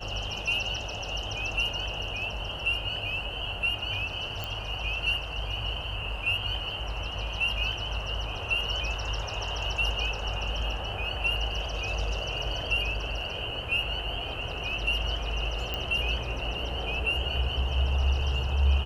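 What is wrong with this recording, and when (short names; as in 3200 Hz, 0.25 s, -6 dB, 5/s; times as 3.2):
4.44 pop -18 dBFS
15.74 pop -17 dBFS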